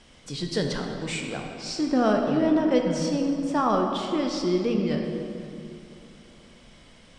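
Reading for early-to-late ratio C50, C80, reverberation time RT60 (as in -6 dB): 3.5 dB, 4.5 dB, 2.8 s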